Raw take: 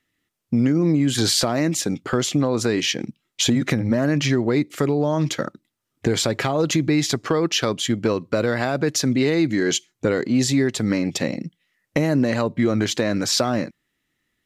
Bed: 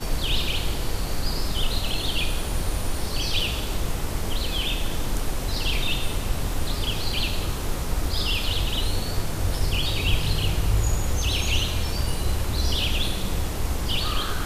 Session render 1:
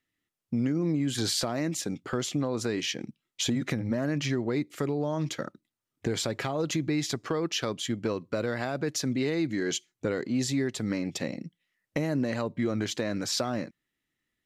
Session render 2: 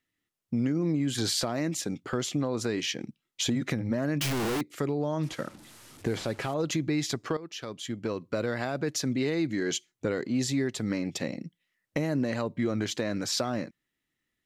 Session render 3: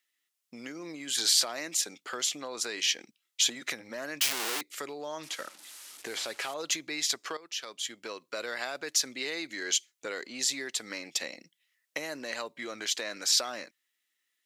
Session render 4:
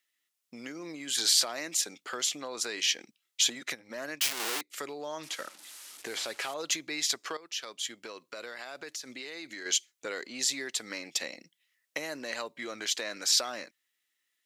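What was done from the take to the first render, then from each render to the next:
trim -9 dB
4.21–4.61 s: one-bit comparator; 5.23–6.54 s: one-bit delta coder 64 kbps, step -45 dBFS; 7.37–8.35 s: fade in, from -15 dB
high-pass 460 Hz 12 dB/octave; tilt shelf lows -7 dB, about 1.5 kHz
3.59–4.78 s: transient shaper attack -2 dB, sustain -8 dB; 8.00–9.66 s: compression 4:1, threshold -38 dBFS

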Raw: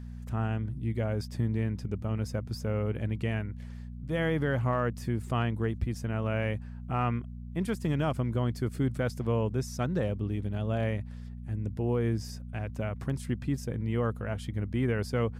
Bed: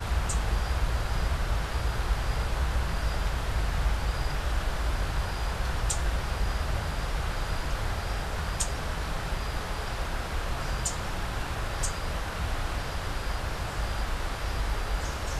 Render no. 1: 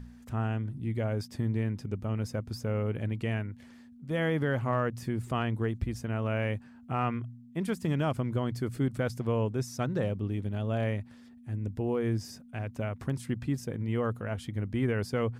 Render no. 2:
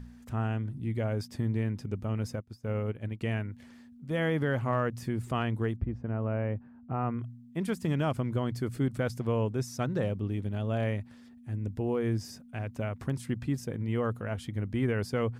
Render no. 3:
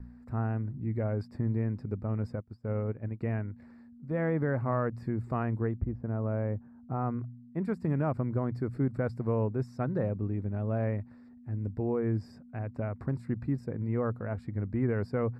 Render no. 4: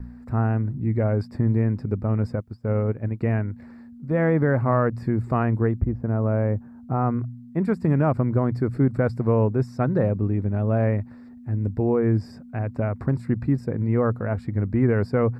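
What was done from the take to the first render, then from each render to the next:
de-hum 60 Hz, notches 3
2.35–3.21 s: upward expansion 2.5:1, over -42 dBFS; 5.76–7.19 s: Bessel low-pass 1 kHz
vibrato 0.73 Hz 22 cents; boxcar filter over 14 samples
trim +9 dB

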